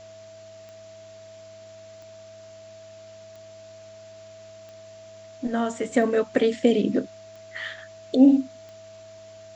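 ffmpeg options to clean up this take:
ffmpeg -i in.wav -af "adeclick=threshold=4,bandreject=frequency=103:width_type=h:width=4,bandreject=frequency=206:width_type=h:width=4,bandreject=frequency=309:width_type=h:width=4,bandreject=frequency=412:width_type=h:width=4,bandreject=frequency=515:width_type=h:width=4,bandreject=frequency=618:width_type=h:width=4,bandreject=frequency=650:width=30,afwtdn=0.0025" out.wav

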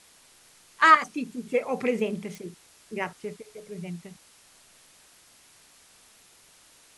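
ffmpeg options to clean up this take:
ffmpeg -i in.wav -af "adeclick=threshold=4,afwtdn=0.002" out.wav

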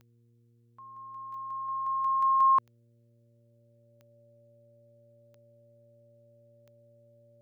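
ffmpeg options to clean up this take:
ffmpeg -i in.wav -af "adeclick=threshold=4,bandreject=frequency=117.5:width_type=h:width=4,bandreject=frequency=235:width_type=h:width=4,bandreject=frequency=352.5:width_type=h:width=4,bandreject=frequency=470:width_type=h:width=4,bandreject=frequency=580:width=30,agate=range=-21dB:threshold=-56dB" out.wav

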